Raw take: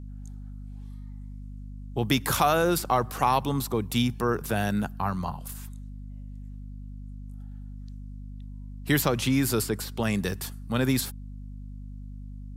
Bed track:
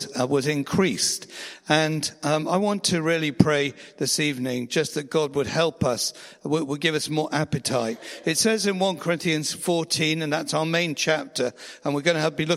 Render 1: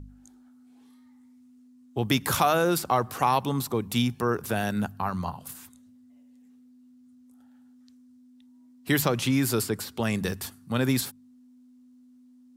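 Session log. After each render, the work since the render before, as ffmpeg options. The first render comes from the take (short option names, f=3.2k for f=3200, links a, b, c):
-af "bandreject=f=50:t=h:w=4,bandreject=f=100:t=h:w=4,bandreject=f=150:t=h:w=4,bandreject=f=200:t=h:w=4"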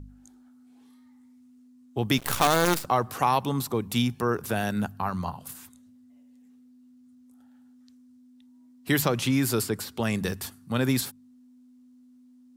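-filter_complex "[0:a]asettb=1/sr,asplit=3[a][b][c];[a]atrim=end=2.184[d];[b]atrim=start=2.18:end=2.85,asetpts=PTS-STARTPTS,afade=t=in:d=0.004:c=qsin,afade=t=out:st=0.666:d=0.004:c=qsin,acrusher=bits=4:dc=4:mix=0:aa=0.000001[e];[c]atrim=start=2.846[f];[d][e]acrossfade=d=0.004:c1=hsin:c2=qsin[g];[g][f]acrossfade=d=0.004:c1=qsin:c2=hsin"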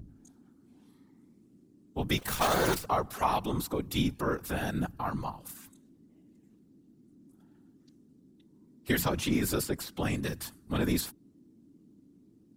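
-filter_complex "[0:a]asplit=2[a][b];[b]asoftclip=type=tanh:threshold=-21.5dB,volume=-12dB[c];[a][c]amix=inputs=2:normalize=0,afftfilt=real='hypot(re,im)*cos(2*PI*random(0))':imag='hypot(re,im)*sin(2*PI*random(1))':win_size=512:overlap=0.75"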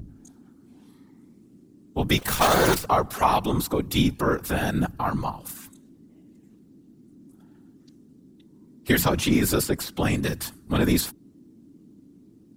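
-af "volume=7.5dB"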